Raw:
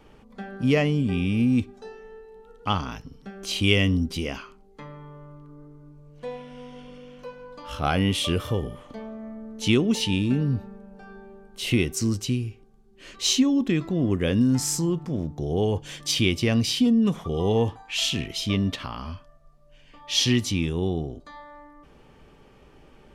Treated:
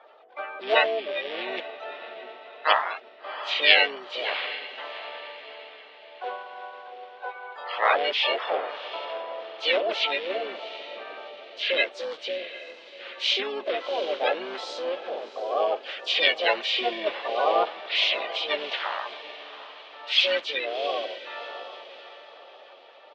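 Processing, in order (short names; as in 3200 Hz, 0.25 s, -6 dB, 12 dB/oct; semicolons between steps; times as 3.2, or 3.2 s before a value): bin magnitudes rounded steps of 30 dB; diffused feedback echo 0.725 s, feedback 42%, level -13 dB; harmoniser -7 st -17 dB, -4 st -3 dB, +7 st -2 dB; elliptic band-pass 560–3500 Hz, stop band 60 dB; gain +3 dB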